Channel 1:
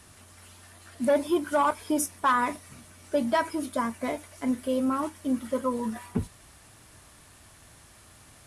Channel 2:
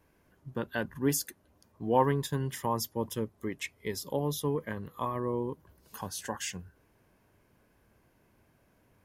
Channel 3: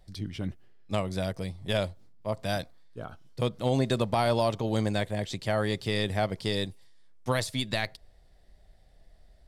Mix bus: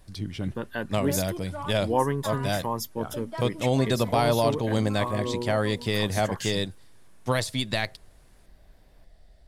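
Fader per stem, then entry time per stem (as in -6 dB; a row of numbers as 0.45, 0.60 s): -13.0, +1.0, +2.5 dB; 0.00, 0.00, 0.00 s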